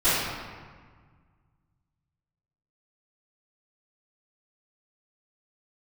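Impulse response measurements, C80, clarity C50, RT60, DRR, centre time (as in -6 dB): 0.5 dB, -2.5 dB, 1.6 s, -20.0 dB, 0.114 s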